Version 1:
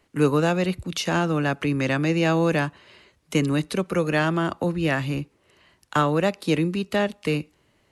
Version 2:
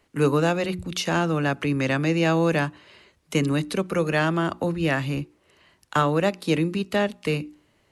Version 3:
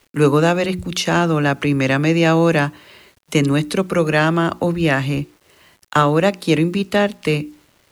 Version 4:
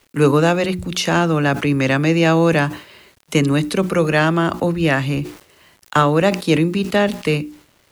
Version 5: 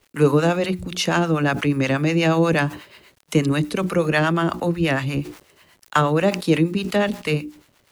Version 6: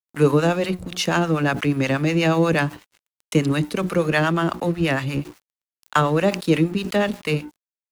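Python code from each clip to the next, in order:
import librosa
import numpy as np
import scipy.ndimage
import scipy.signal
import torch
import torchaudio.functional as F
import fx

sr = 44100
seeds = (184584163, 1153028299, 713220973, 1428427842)

y1 = fx.hum_notches(x, sr, base_hz=60, count=6)
y2 = fx.quant_dither(y1, sr, seeds[0], bits=10, dither='none')
y2 = y2 * librosa.db_to_amplitude(6.5)
y3 = fx.sustainer(y2, sr, db_per_s=130.0)
y4 = fx.harmonic_tremolo(y3, sr, hz=8.3, depth_pct=70, crossover_hz=670.0)
y5 = np.sign(y4) * np.maximum(np.abs(y4) - 10.0 ** (-40.5 / 20.0), 0.0)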